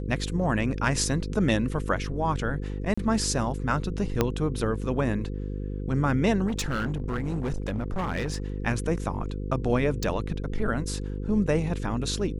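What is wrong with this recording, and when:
buzz 50 Hz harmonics 10 -32 dBFS
2.94–2.98 gap 35 ms
4.21 pop -8 dBFS
6.47–8.44 clipped -24.5 dBFS
10.03 pop

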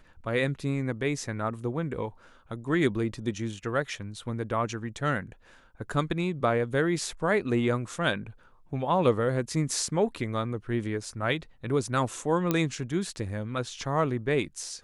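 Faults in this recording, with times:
12.51 pop -11 dBFS

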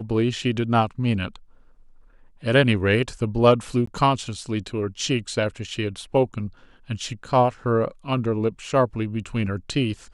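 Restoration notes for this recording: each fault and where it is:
3.86–3.87 gap 14 ms

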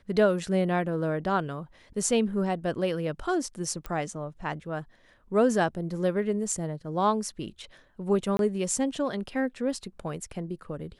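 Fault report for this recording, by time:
3.86 pop -21 dBFS
8.37–8.39 gap 22 ms

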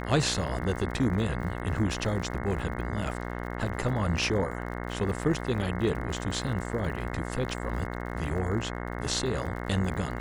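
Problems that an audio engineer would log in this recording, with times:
buzz 60 Hz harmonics 36 -35 dBFS
crackle 63/s -38 dBFS

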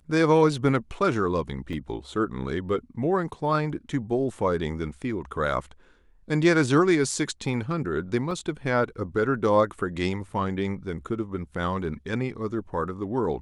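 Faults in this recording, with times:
1.73 gap 2.4 ms
8.31 gap 3 ms

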